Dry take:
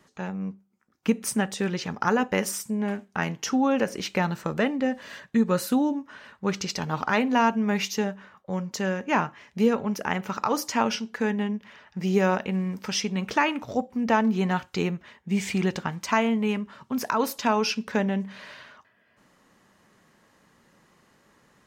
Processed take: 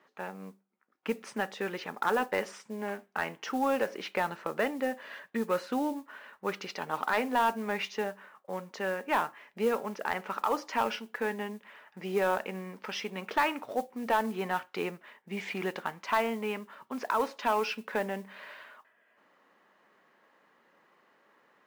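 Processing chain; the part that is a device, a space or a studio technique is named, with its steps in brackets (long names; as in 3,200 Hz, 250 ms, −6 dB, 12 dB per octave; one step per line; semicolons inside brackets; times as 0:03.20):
carbon microphone (band-pass filter 400–2,700 Hz; soft clipping −15 dBFS, distortion −17 dB; noise that follows the level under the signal 23 dB)
level −1.5 dB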